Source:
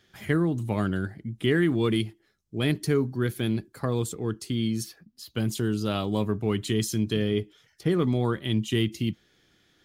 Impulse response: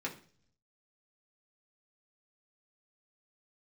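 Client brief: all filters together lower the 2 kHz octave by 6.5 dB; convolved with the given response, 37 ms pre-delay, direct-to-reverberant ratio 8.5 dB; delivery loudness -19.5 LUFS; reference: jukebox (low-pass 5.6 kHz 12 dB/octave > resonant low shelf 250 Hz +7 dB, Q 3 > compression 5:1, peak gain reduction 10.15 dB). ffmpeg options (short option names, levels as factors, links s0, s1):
-filter_complex "[0:a]equalizer=f=2000:t=o:g=-8,asplit=2[s0][s1];[1:a]atrim=start_sample=2205,adelay=37[s2];[s1][s2]afir=irnorm=-1:irlink=0,volume=0.282[s3];[s0][s3]amix=inputs=2:normalize=0,lowpass=5600,lowshelf=f=250:t=q:w=3:g=7,acompressor=threshold=0.0891:ratio=5,volume=2.11"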